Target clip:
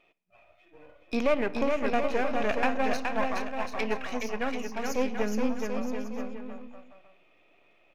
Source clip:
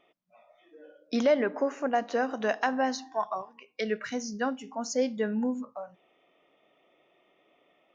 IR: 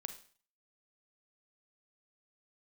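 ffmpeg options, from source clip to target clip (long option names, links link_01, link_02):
-filter_complex "[0:a]aeval=exprs='if(lt(val(0),0),0.251*val(0),val(0))':channel_layout=same,equalizer=frequency=2500:width=6.7:gain=13,aecho=1:1:420|735|971.2|1148|1281:0.631|0.398|0.251|0.158|0.1,asplit=2[link_01][link_02];[1:a]atrim=start_sample=2205,lowpass=4400[link_03];[link_02][link_03]afir=irnorm=-1:irlink=0,volume=-7.5dB[link_04];[link_01][link_04]amix=inputs=2:normalize=0,volume=-1dB"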